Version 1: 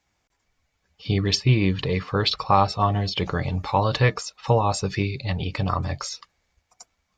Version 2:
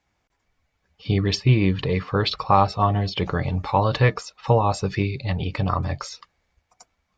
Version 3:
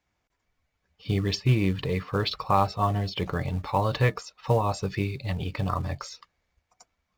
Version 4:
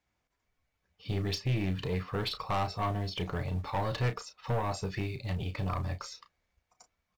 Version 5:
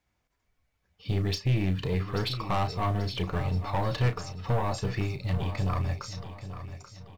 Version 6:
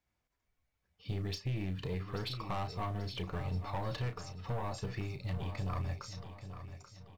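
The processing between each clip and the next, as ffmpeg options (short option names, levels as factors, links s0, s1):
-af "highshelf=f=4800:g=-10,volume=1.19"
-filter_complex "[0:a]bandreject=f=820:w=24,asplit=2[s0][s1];[s1]acrusher=bits=4:mode=log:mix=0:aa=0.000001,volume=0.447[s2];[s0][s2]amix=inputs=2:normalize=0,volume=0.398"
-filter_complex "[0:a]aeval=exprs='(tanh(12.6*val(0)+0.2)-tanh(0.2))/12.6':c=same,asplit=2[s0][s1];[s1]adelay=33,volume=0.316[s2];[s0][s2]amix=inputs=2:normalize=0,volume=0.668"
-filter_complex "[0:a]lowshelf=f=160:g=4.5,asplit=2[s0][s1];[s1]aecho=0:1:835|1670|2505|3340:0.266|0.109|0.0447|0.0183[s2];[s0][s2]amix=inputs=2:normalize=0,volume=1.26"
-af "alimiter=limit=0.0841:level=0:latency=1:release=162,volume=0.447"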